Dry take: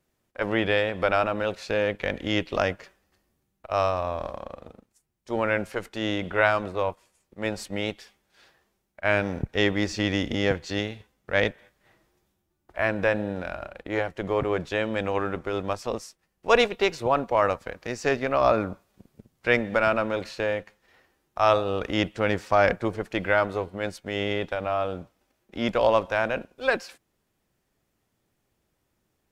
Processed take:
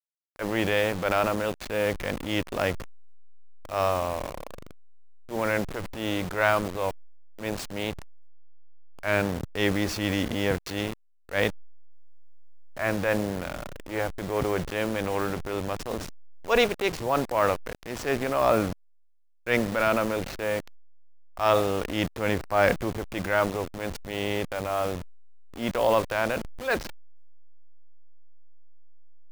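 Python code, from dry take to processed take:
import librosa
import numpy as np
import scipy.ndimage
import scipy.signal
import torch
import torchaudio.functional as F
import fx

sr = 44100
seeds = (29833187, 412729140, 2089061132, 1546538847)

y = fx.delta_hold(x, sr, step_db=-32.5)
y = fx.transient(y, sr, attack_db=-7, sustain_db=4)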